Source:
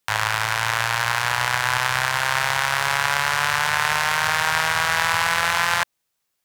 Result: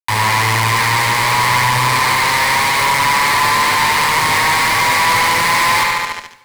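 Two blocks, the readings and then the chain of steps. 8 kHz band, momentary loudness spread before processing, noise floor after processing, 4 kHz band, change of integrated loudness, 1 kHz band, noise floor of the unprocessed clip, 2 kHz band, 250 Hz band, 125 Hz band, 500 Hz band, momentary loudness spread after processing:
+8.0 dB, 2 LU, -32 dBFS, +7.0 dB, +7.5 dB, +9.5 dB, -76 dBFS, +6.0 dB, no reading, +10.5 dB, +7.0 dB, 1 LU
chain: rippled EQ curve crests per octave 0.92, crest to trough 13 dB; on a send: bucket-brigade echo 72 ms, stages 2048, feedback 72%, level -9 dB; on the sum: fuzz box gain 29 dB, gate -35 dBFS; peaking EQ 69 Hz -10 dB 0.77 oct; two-slope reverb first 0.42 s, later 1.6 s, from -16 dB, DRR 9.5 dB; trim +1 dB

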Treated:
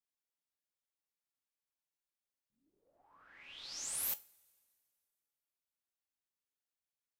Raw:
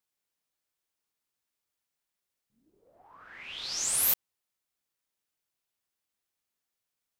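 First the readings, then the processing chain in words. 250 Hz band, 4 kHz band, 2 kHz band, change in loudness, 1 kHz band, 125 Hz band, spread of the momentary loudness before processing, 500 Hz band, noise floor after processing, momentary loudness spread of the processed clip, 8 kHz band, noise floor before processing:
-11.0 dB, -11.5 dB, -11.5 dB, -11.5 dB, -11.0 dB, -12.5 dB, 17 LU, -11.5 dB, under -85 dBFS, 17 LU, -11.5 dB, under -85 dBFS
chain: feedback comb 280 Hz, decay 0.22 s, harmonics all, mix 60%; two-slope reverb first 0.38 s, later 2.3 s, from -18 dB, DRR 16 dB; trim -5 dB

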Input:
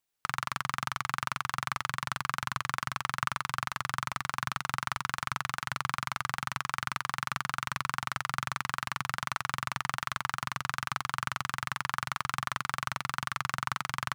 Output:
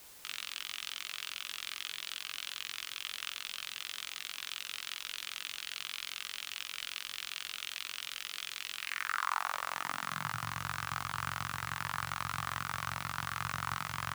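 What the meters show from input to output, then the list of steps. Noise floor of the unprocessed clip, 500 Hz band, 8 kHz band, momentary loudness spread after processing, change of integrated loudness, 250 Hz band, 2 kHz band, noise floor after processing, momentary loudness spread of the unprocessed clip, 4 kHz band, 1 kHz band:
-70 dBFS, -6.5 dB, -2.0 dB, 3 LU, -4.5 dB, -7.5 dB, -5.5 dB, -52 dBFS, 1 LU, +1.0 dB, -7.0 dB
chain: high-pass sweep 3.1 kHz -> 70 Hz, 8.74–10.58 s; doubling 19 ms -2 dB; word length cut 8-bit, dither triangular; trim -6 dB

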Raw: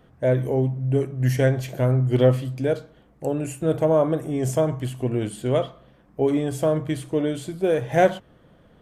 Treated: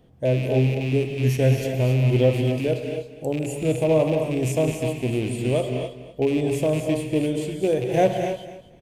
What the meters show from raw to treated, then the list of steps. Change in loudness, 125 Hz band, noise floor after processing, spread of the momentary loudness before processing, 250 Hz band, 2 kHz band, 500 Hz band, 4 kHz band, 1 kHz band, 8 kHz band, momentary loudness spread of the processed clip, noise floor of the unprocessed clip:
0.0 dB, +1.0 dB, -48 dBFS, 8 LU, +1.0 dB, +0.5 dB, 0.0 dB, +4.0 dB, -2.0 dB, +1.5 dB, 8 LU, -56 dBFS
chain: rattle on loud lows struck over -27 dBFS, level -22 dBFS; peaking EQ 1.4 kHz -13 dB 0.97 oct; on a send: feedback delay 249 ms, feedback 18%, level -14 dB; on the sum: gated-style reverb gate 300 ms rising, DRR 4 dB

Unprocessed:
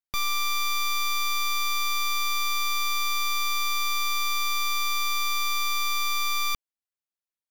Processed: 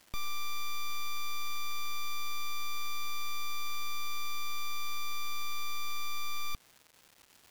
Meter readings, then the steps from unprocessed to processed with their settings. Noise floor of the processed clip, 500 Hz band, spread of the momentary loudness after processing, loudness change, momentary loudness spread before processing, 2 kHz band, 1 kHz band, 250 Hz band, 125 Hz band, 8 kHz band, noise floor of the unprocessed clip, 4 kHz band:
-63 dBFS, -7.5 dB, 0 LU, -12.5 dB, 0 LU, -12.5 dB, -11.5 dB, -5.5 dB, no reading, -12.5 dB, under -85 dBFS, -12.5 dB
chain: bass shelf 360 Hz +10 dB; peak limiter -25.5 dBFS, peak gain reduction 9.5 dB; crackle 550 per s -43 dBFS; trim -3 dB

